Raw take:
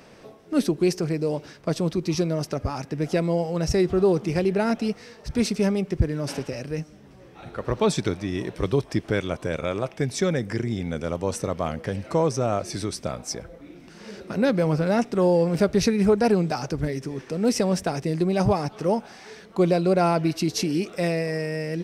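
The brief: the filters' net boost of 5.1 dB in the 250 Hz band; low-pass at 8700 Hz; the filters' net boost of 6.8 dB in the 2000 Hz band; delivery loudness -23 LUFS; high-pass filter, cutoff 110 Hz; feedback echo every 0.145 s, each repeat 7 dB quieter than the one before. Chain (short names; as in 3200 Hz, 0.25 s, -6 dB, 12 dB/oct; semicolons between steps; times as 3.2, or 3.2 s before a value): HPF 110 Hz; LPF 8700 Hz; bell 250 Hz +7.5 dB; bell 2000 Hz +8.5 dB; feedback echo 0.145 s, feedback 45%, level -7 dB; gain -2.5 dB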